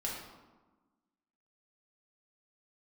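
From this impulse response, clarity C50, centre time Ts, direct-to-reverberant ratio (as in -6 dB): 2.0 dB, 60 ms, -4.0 dB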